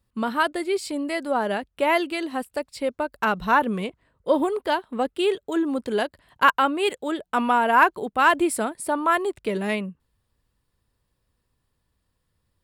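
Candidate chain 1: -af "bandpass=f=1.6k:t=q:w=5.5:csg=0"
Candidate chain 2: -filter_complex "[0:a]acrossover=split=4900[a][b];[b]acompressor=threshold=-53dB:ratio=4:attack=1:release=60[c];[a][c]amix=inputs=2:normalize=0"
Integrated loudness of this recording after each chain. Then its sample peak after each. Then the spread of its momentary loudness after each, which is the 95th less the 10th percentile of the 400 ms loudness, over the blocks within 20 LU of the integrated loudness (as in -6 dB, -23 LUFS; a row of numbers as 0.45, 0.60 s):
-31.0, -23.5 LUFS; -11.5, -4.5 dBFS; 20, 10 LU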